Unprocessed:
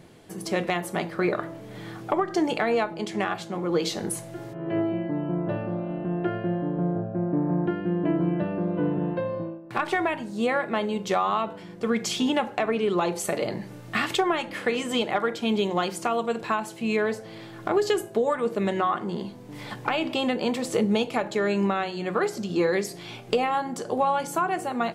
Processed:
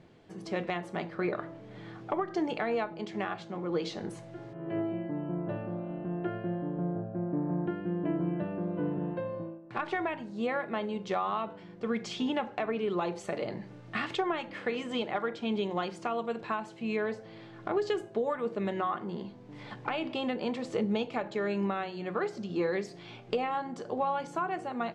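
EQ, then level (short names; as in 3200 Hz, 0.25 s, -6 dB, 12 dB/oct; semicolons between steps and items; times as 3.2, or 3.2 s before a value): air absorption 120 m; -6.5 dB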